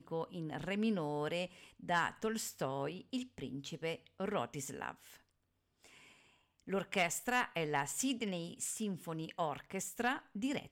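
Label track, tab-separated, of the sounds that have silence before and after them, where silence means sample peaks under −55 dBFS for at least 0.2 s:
5.830000	6.170000	sound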